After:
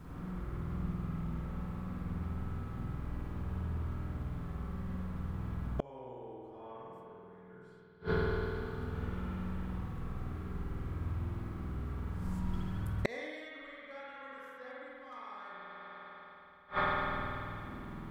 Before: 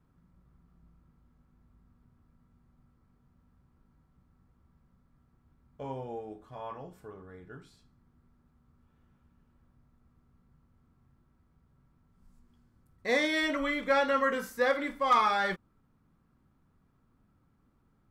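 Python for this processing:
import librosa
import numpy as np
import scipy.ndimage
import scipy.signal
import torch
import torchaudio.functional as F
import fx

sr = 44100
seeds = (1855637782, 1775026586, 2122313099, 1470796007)

y = fx.rev_spring(x, sr, rt60_s=2.8, pass_ms=(49,), chirp_ms=75, drr_db=-8.0)
y = fx.rider(y, sr, range_db=10, speed_s=0.5)
y = fx.gate_flip(y, sr, shuts_db=-26.0, range_db=-34)
y = y * 10.0 ** (9.0 / 20.0)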